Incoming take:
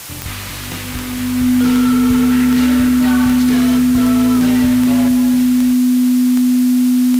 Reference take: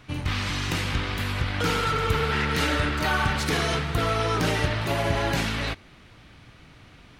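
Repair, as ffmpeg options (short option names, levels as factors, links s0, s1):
-af "adeclick=t=4,bandreject=f=250:w=30,afwtdn=0.032,asetnsamples=n=441:p=0,asendcmd='5.08 volume volume 7dB',volume=1"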